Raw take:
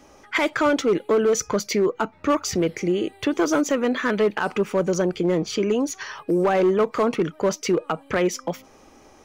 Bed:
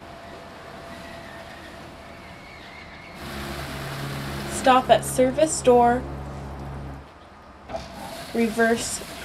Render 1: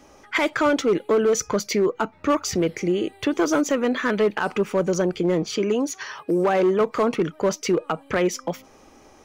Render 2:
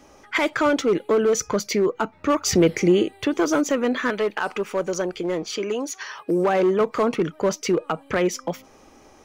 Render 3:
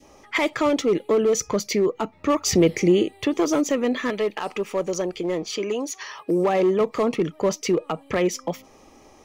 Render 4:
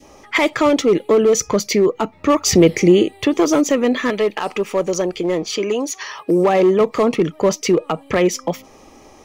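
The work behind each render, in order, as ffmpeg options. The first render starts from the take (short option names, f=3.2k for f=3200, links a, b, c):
-filter_complex "[0:a]asettb=1/sr,asplit=3[a][b][c];[a]atrim=end=5.454[d];[b]atrim=start=5.45:end=6.81,asetpts=PTS-STARTPTS,afade=t=in:d=0.004:c=qsin,afade=t=out:st=1.356:d=0.004:c=qsin,highpass=f=110:p=1[e];[c]atrim=start=6.806[f];[d][e]acrossfade=d=0.004:c1=hsin:c2=qsin[g];[g][f]acrossfade=d=0.004:c1=qsin:c2=hsin"
-filter_complex "[0:a]asplit=3[a][b][c];[a]afade=t=out:st=2.45:d=0.02[d];[b]acontrast=41,afade=t=in:st=2.45:d=0.02,afade=t=out:st=3.02:d=0.02[e];[c]afade=t=in:st=3.02:d=0.02[f];[d][e][f]amix=inputs=3:normalize=0,asettb=1/sr,asplit=3[g][h][i];[g]atrim=end=4.104[j];[h]atrim=start=4.1:end=6.27,asetpts=PTS-STARTPTS,afade=t=in:d=0.004:c=qsin,afade=t=out:st=2.166:d=0.004:c=qsin,equalizer=f=140:t=o:w=2.3:g=-10[k];[i]atrim=start=6.266[l];[j][k]acrossfade=d=0.004:c1=hsin:c2=qsin[m];[m][l]acrossfade=d=0.004:c1=qsin:c2=hsin"
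-af "bandreject=f=1.5k:w=5.2,adynamicequalizer=threshold=0.0158:dfrequency=1100:dqfactor=1.2:tfrequency=1100:tqfactor=1.2:attack=5:release=100:ratio=0.375:range=2:mode=cutabove:tftype=bell"
-af "volume=6dB"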